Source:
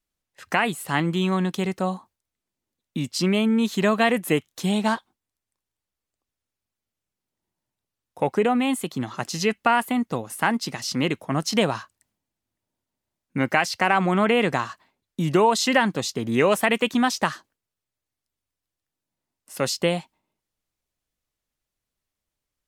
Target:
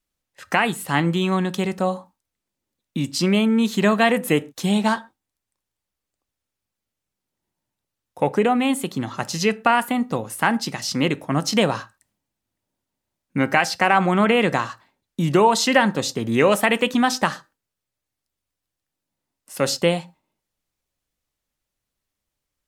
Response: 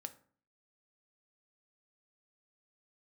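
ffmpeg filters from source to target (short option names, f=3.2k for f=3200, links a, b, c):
-filter_complex "[0:a]asplit=2[a][b];[1:a]atrim=start_sample=2205,atrim=end_sample=6174[c];[b][c]afir=irnorm=-1:irlink=0,volume=4.5dB[d];[a][d]amix=inputs=2:normalize=0,volume=-3.5dB"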